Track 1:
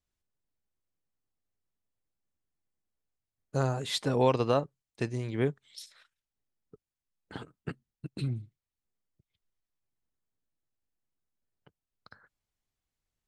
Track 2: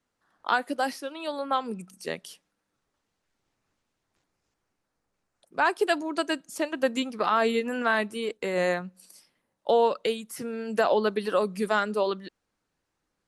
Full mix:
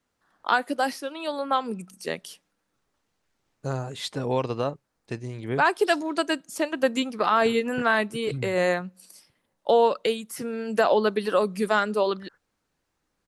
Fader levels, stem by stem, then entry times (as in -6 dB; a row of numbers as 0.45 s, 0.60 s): -1.0 dB, +2.5 dB; 0.10 s, 0.00 s